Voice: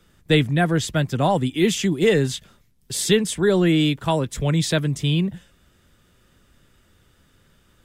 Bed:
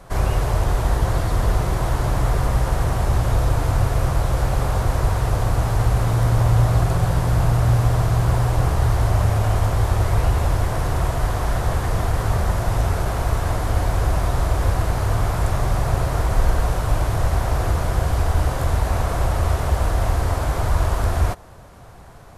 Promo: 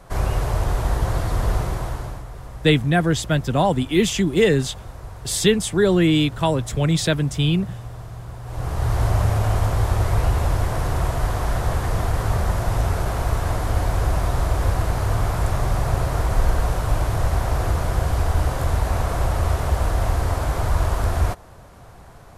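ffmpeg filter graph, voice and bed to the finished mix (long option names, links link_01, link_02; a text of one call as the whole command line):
ffmpeg -i stem1.wav -i stem2.wav -filter_complex "[0:a]adelay=2350,volume=1dB[link_01];[1:a]volume=14dB,afade=type=out:start_time=1.56:duration=0.69:silence=0.177828,afade=type=in:start_time=8.43:duration=0.6:silence=0.158489[link_02];[link_01][link_02]amix=inputs=2:normalize=0" out.wav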